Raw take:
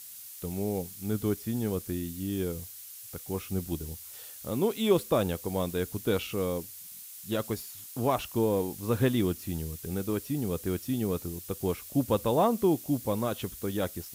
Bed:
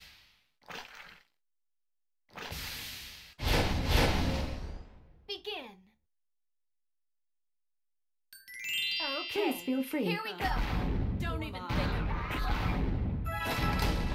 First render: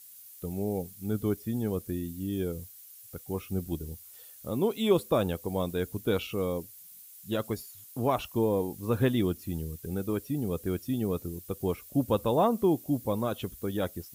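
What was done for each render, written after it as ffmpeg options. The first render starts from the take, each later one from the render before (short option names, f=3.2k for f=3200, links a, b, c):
-af "afftdn=nr=9:nf=-46"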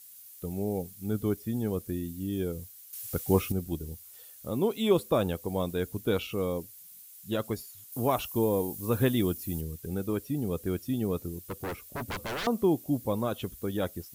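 -filter_complex "[0:a]asettb=1/sr,asplit=3[a][b][c];[a]atrim=end=7.924[d];[b]atrim=start=7.92:end=9.61,asetpts=PTS-STARTPTS,afade=t=in:d=0.004:c=qsin,afade=t=out:st=1.686:d=0.004:c=qsin,highshelf=f=7k:g=9.5[e];[c]atrim=start=9.606[f];[d][e]acrossfade=d=0.004:c1=hsin:c2=qsin[g];[g][f]acrossfade=d=0.004:c1=qsin:c2=hsin,asettb=1/sr,asplit=3[h][i][j];[h]atrim=end=11.464[k];[i]atrim=start=11.46:end=12.47,asetpts=PTS-STARTPTS,afade=t=in:d=0.004:c=qsin,afade=t=out:st=1.006:d=0.004:c=qsin,aeval=exprs='0.0355*(abs(mod(val(0)/0.0355+3,4)-2)-1)':c=same[l];[j]atrim=start=12.466[m];[k][l]acrossfade=d=0.004:c1=hsin:c2=qsin[n];[n][m]acrossfade=d=0.004:c1=qsin:c2=hsin,asplit=3[o][p][q];[o]atrim=end=2.932[r];[p]atrim=start=2.928:end=3.522,asetpts=PTS-STARTPTS,volume=10dB[s];[q]atrim=start=3.518[t];[r][s]acrossfade=d=0.004:c1=hsin:c2=hsin[u];[u][t]acrossfade=d=0.004:c1=hsin:c2=hsin"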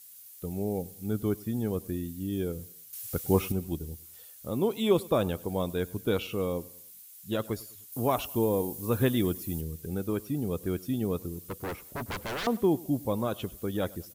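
-af "aecho=1:1:101|202|303:0.0794|0.0342|0.0147"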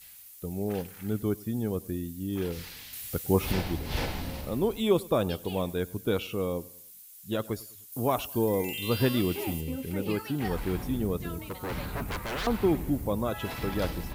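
-filter_complex "[1:a]volume=-5dB[a];[0:a][a]amix=inputs=2:normalize=0"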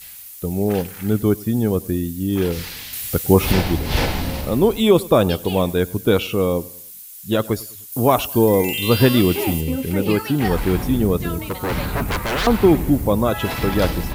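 -af "volume=11.5dB,alimiter=limit=-2dB:level=0:latency=1"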